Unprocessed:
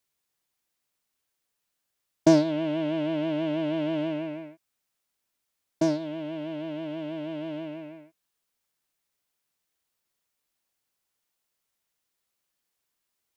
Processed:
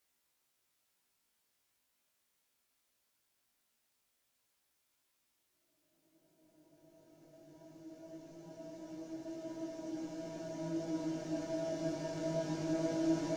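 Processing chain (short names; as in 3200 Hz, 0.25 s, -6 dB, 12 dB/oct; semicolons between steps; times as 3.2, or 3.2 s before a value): added harmonics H 3 -15 dB, 6 -35 dB, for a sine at -7 dBFS; Paulstretch 35×, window 1.00 s, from 5.17; chorus 0.21 Hz, delay 15.5 ms, depth 4.7 ms; gain +11.5 dB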